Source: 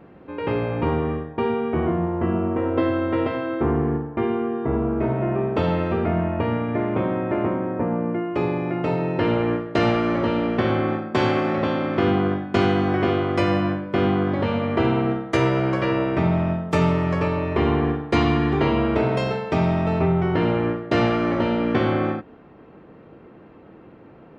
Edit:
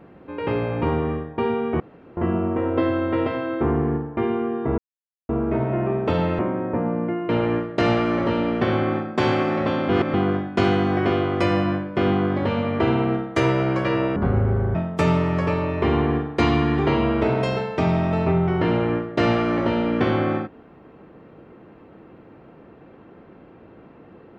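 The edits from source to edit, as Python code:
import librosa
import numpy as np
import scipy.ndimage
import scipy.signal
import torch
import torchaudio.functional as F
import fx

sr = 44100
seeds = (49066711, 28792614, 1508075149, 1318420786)

y = fx.edit(x, sr, fx.room_tone_fill(start_s=1.8, length_s=0.37),
    fx.insert_silence(at_s=4.78, length_s=0.51),
    fx.cut(start_s=5.88, length_s=1.57),
    fx.cut(start_s=8.35, length_s=0.91),
    fx.reverse_span(start_s=11.86, length_s=0.25),
    fx.speed_span(start_s=16.13, length_s=0.36, speed=0.61), tone=tone)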